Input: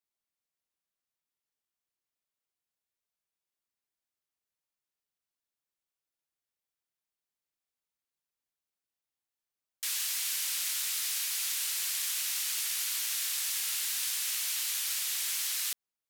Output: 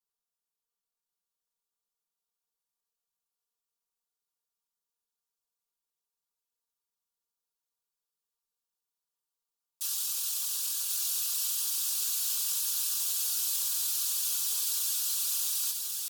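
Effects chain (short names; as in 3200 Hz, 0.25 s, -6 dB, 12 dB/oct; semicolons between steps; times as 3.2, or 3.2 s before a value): bell 180 Hz -4.5 dB 1.1 oct; fixed phaser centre 350 Hz, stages 8; comb 4.9 ms, depth 67%; pitch shift +2.5 st; on a send: thinning echo 1.085 s, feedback 55%, high-pass 490 Hz, level -4 dB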